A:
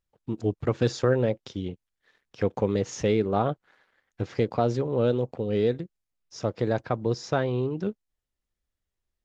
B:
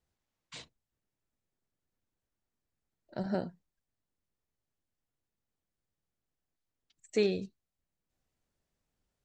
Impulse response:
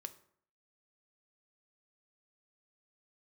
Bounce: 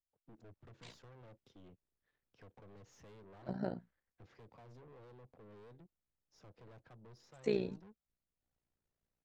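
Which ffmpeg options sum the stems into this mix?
-filter_complex "[0:a]acrossover=split=140|3000[a][b][c];[b]acompressor=threshold=-25dB:ratio=10[d];[a][d][c]amix=inputs=3:normalize=0,aeval=exprs='(tanh(70.8*val(0)+0.3)-tanh(0.3))/70.8':c=same,volume=-18dB[e];[1:a]tremolo=f=58:d=0.824,adelay=300,volume=-2dB[f];[e][f]amix=inputs=2:normalize=0,highshelf=f=3.6k:g=-9.5"

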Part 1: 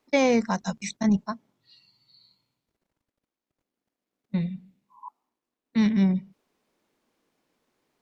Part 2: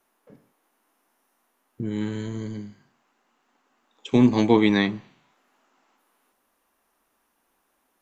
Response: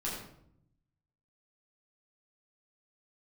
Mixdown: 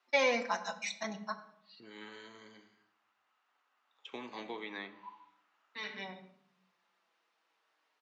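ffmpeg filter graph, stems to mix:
-filter_complex "[0:a]asplit=2[a][b];[b]adelay=5.2,afreqshift=-0.46[c];[a][c]amix=inputs=2:normalize=1,volume=-4dB,asplit=2[d][e];[e]volume=-11dB[f];[1:a]equalizer=f=1.3k:t=o:w=0.26:g=5.5,acrossover=split=530|2800[g][h][i];[g]acompressor=threshold=-20dB:ratio=4[j];[h]acompressor=threshold=-35dB:ratio=4[k];[i]acompressor=threshold=-47dB:ratio=4[l];[j][k][l]amix=inputs=3:normalize=0,volume=-13dB,asplit=3[m][n][o];[n]volume=-14.5dB[p];[o]apad=whole_len=353748[q];[d][q]sidechaincompress=threshold=-52dB:ratio=4:attack=16:release=1170[r];[2:a]atrim=start_sample=2205[s];[f][p]amix=inputs=2:normalize=0[t];[t][s]afir=irnorm=-1:irlink=0[u];[r][m][u]amix=inputs=3:normalize=0,highpass=600,lowpass=4.8k,equalizer=f=3.1k:t=o:w=2.9:g=5.5"

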